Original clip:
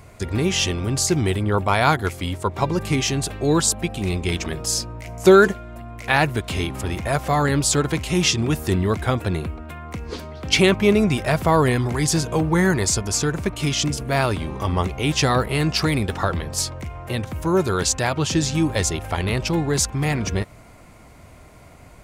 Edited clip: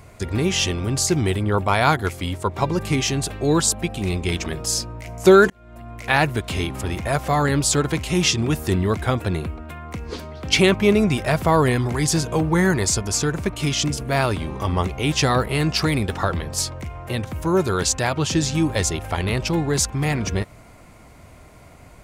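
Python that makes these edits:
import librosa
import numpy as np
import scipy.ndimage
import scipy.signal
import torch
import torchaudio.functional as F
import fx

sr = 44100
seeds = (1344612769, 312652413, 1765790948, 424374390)

y = fx.edit(x, sr, fx.fade_in_span(start_s=5.5, length_s=0.41), tone=tone)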